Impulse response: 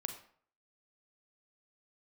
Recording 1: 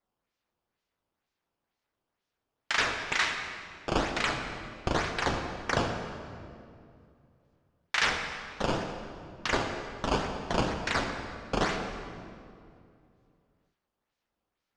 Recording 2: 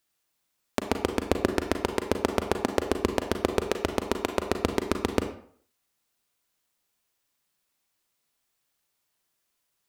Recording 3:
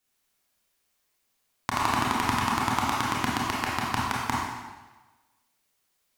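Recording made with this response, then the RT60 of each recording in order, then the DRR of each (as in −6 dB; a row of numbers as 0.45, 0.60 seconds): 2; 2.5, 0.55, 1.2 seconds; 3.5, 6.0, −5.0 decibels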